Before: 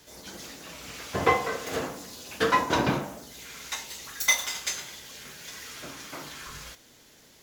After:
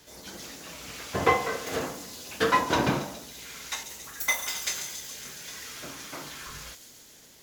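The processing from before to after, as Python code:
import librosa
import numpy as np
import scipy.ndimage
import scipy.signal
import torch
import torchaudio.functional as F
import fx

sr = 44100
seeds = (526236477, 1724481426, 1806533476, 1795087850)

p1 = fx.peak_eq(x, sr, hz=4500.0, db=-9.0, octaves=1.5, at=(3.83, 4.48))
y = p1 + fx.echo_wet_highpass(p1, sr, ms=139, feedback_pct=75, hz=5500.0, wet_db=-5.5, dry=0)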